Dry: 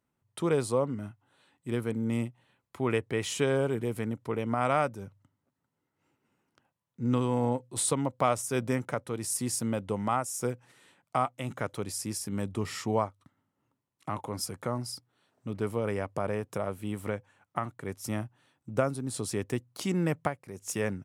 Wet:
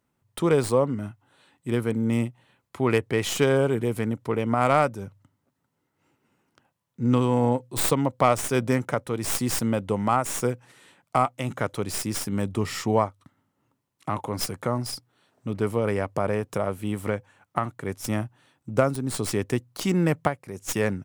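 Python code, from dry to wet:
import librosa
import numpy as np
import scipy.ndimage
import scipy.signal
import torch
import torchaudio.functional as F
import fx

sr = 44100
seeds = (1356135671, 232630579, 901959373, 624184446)

y = fx.tracing_dist(x, sr, depth_ms=0.11)
y = y * librosa.db_to_amplitude(6.0)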